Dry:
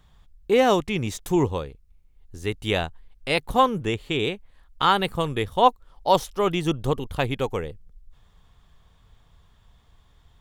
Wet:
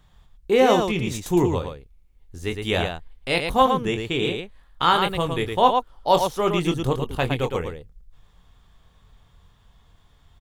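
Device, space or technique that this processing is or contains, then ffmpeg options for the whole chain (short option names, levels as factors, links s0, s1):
slapback doubling: -filter_complex "[0:a]asplit=3[s0][s1][s2];[s1]adelay=23,volume=0.422[s3];[s2]adelay=112,volume=0.531[s4];[s0][s3][s4]amix=inputs=3:normalize=0"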